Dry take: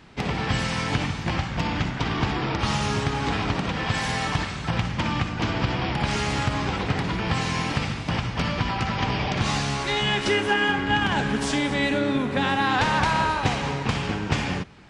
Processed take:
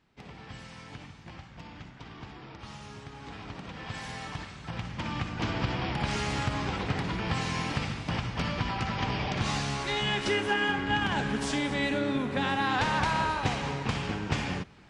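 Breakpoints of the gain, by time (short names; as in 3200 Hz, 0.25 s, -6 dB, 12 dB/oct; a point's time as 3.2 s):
3.03 s -20 dB
3.94 s -13 dB
4.59 s -13 dB
5.44 s -5.5 dB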